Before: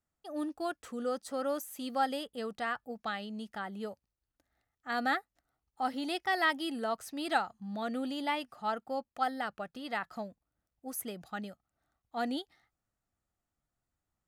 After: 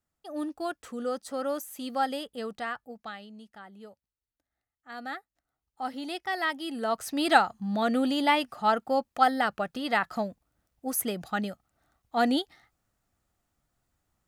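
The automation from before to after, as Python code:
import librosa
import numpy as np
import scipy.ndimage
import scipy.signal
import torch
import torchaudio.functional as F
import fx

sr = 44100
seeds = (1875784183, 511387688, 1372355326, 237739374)

y = fx.gain(x, sr, db=fx.line((2.5, 2.5), (3.5, -8.0), (4.92, -8.0), (5.91, -0.5), (6.61, -0.5), (7.12, 9.5)))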